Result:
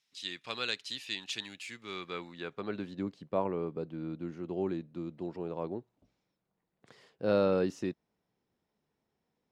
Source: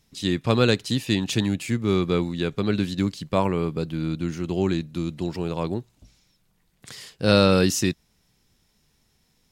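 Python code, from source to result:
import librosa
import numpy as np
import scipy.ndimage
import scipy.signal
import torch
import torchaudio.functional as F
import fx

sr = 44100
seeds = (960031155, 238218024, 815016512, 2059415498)

y = fx.filter_sweep_bandpass(x, sr, from_hz=3100.0, to_hz=530.0, start_s=1.77, end_s=3.04, q=0.77)
y = F.gain(torch.from_numpy(y), -7.0).numpy()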